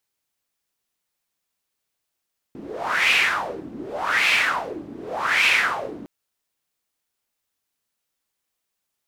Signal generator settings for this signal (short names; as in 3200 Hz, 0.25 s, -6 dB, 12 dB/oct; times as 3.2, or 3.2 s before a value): wind-like swept noise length 3.51 s, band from 270 Hz, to 2500 Hz, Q 4.9, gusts 3, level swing 19 dB